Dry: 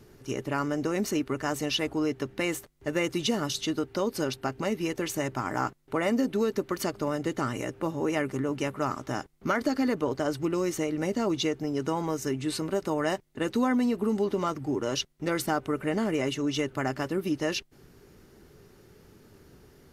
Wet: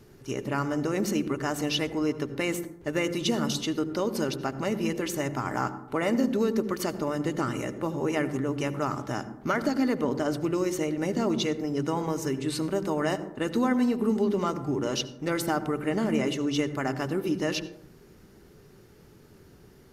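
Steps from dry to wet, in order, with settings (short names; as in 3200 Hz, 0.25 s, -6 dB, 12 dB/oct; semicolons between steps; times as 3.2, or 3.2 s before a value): on a send: bell 170 Hz +13 dB 2.6 oct + reverb RT60 0.75 s, pre-delay 68 ms, DRR 13 dB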